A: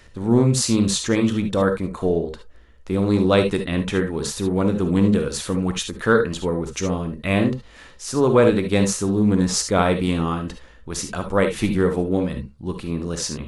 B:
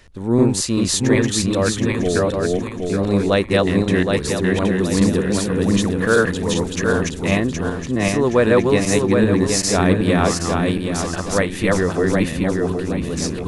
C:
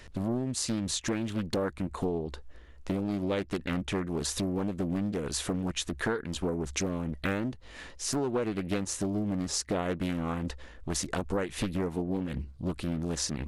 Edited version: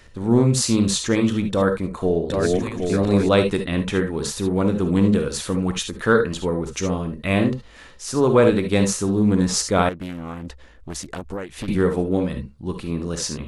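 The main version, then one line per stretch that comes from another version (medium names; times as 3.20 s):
A
2.30–3.29 s: from B
9.89–11.68 s: from C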